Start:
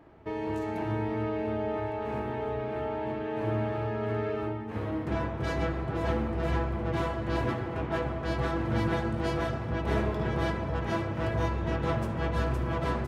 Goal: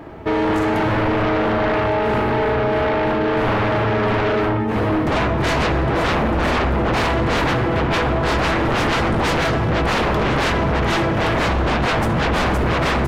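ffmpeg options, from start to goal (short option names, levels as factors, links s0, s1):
-af "bandreject=f=50:t=h:w=6,bandreject=f=100:t=h:w=6,aeval=exprs='0.178*sin(PI/2*5.62*val(0)/0.178)':c=same"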